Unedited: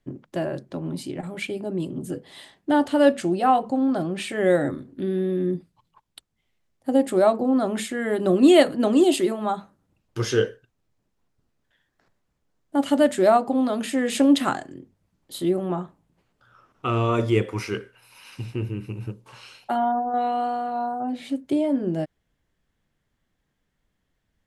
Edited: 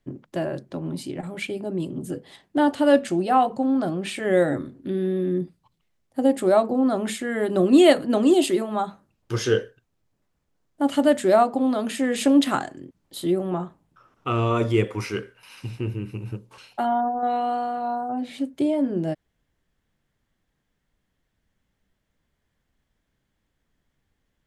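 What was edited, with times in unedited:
shrink pauses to 45%

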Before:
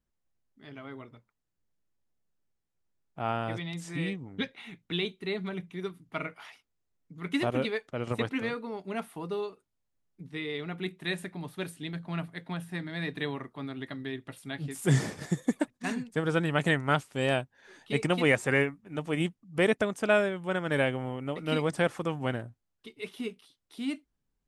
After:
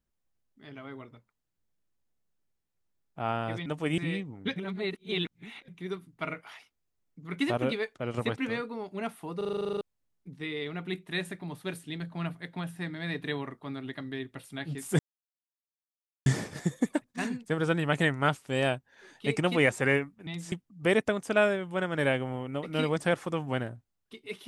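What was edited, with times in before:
3.66–3.91 swap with 18.93–19.25
4.49–5.61 reverse
9.3 stutter in place 0.04 s, 11 plays
14.92 insert silence 1.27 s

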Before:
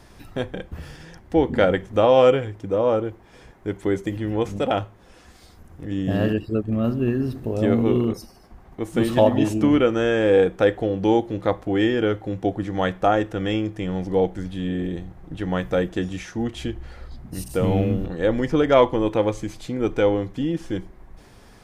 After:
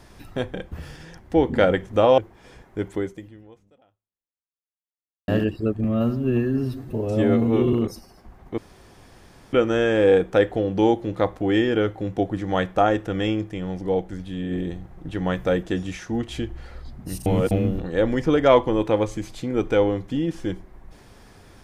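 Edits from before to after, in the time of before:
2.18–3.07 cut
3.8–6.17 fade out exponential
6.73–7.99 stretch 1.5×
8.84–9.79 room tone
13.75–14.77 gain -3 dB
17.52–17.77 reverse

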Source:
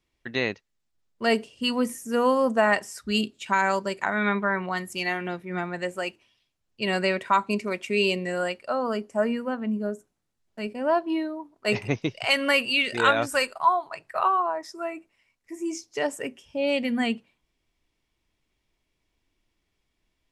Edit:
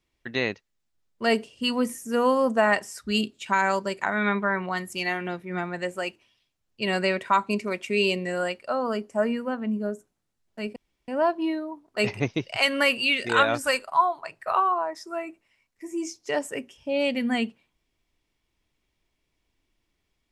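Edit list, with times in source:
10.76 insert room tone 0.32 s

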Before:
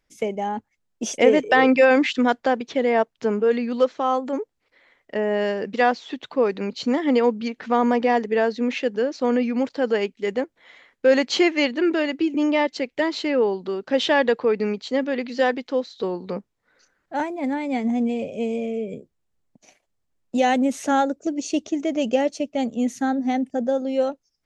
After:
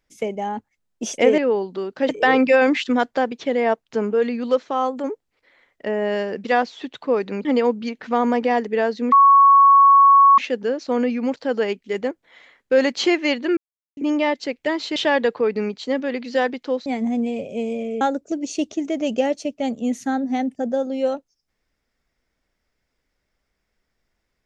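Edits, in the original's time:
6.74–7.04 cut
8.71 add tone 1110 Hz -8 dBFS 1.26 s
11.9–12.3 mute
13.29–14 move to 1.38
15.9–17.69 cut
18.84–20.96 cut

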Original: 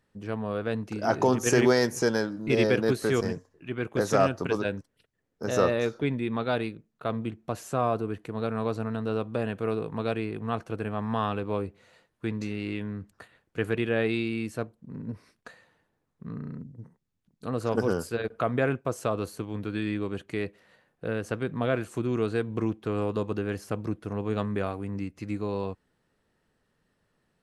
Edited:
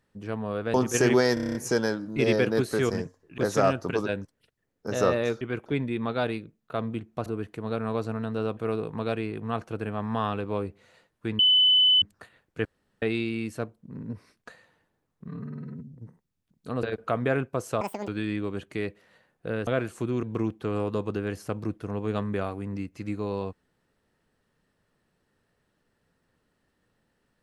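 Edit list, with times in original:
0.74–1.26 cut
1.86 stutter 0.03 s, 8 plays
3.69–3.94 move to 5.97
7.57–7.97 cut
9.28–9.56 cut
12.38–13.01 bleep 3010 Hz -16 dBFS
13.64–14.01 room tone
16.27–16.71 stretch 1.5×
17.6–18.15 cut
19.13–19.66 speed 197%
21.25–21.63 cut
22.19–22.45 cut

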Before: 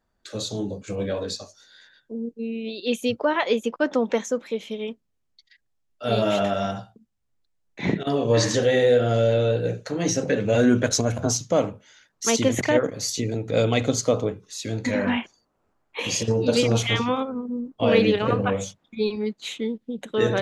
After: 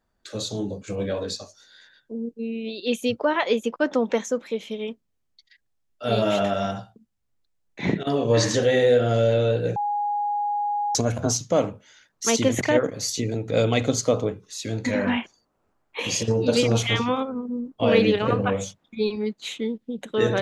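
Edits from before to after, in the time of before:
9.76–10.95 bleep 825 Hz -22 dBFS

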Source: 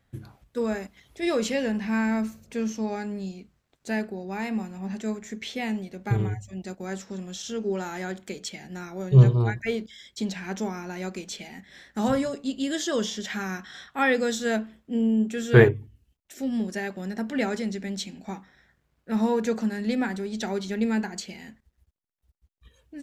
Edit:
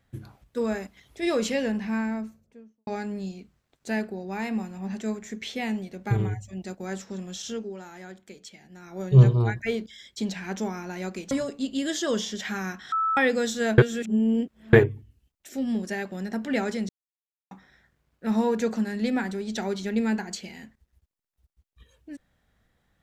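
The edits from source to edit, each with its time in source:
1.56–2.87 studio fade out
7.52–9 dip -10 dB, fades 0.18 s
11.31–12.16 cut
13.77–14.02 bleep 1310 Hz -21.5 dBFS
14.63–15.58 reverse
17.74–18.36 mute

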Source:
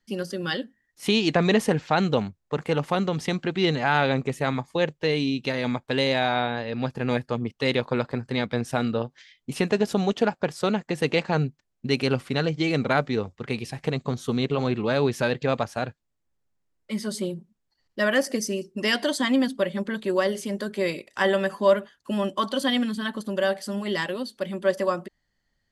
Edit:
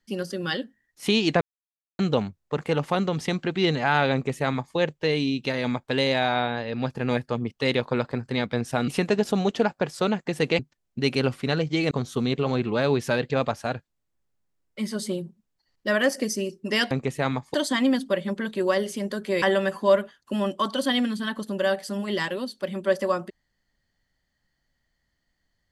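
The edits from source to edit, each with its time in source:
1.41–1.99 mute
4.13–4.76 copy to 19.03
8.88–9.5 cut
11.21–11.46 cut
12.78–14.03 cut
20.91–21.2 cut

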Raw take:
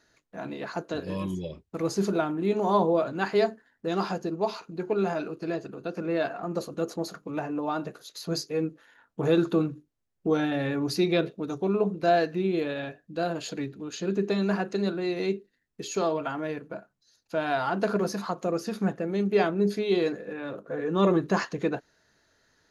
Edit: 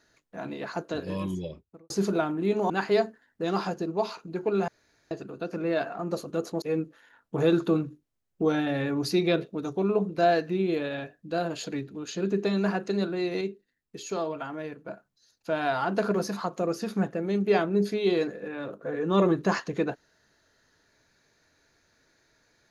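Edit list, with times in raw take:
1.4–1.9 studio fade out
2.7–3.14 cut
5.12–5.55 room tone
7.06–8.47 cut
15.26–16.73 gain -4 dB

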